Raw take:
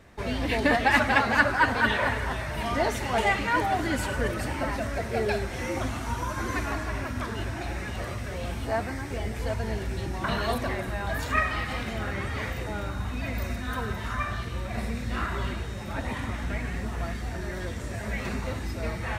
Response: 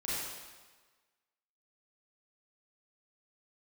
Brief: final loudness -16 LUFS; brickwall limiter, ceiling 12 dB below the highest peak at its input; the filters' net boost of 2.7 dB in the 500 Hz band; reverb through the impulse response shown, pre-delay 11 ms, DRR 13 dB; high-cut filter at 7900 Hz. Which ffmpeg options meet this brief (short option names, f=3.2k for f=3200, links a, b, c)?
-filter_complex "[0:a]lowpass=7.9k,equalizer=f=500:t=o:g=3.5,alimiter=limit=-17dB:level=0:latency=1,asplit=2[a][b];[1:a]atrim=start_sample=2205,adelay=11[c];[b][c]afir=irnorm=-1:irlink=0,volume=-17.5dB[d];[a][d]amix=inputs=2:normalize=0,volume=13.5dB"